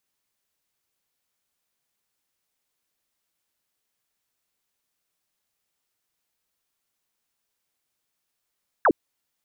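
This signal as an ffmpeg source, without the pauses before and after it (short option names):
-f lavfi -i "aevalsrc='0.2*clip(t/0.002,0,1)*clip((0.06-t)/0.002,0,1)*sin(2*PI*1800*0.06/log(250/1800)*(exp(log(250/1800)*t/0.06)-1))':d=0.06:s=44100"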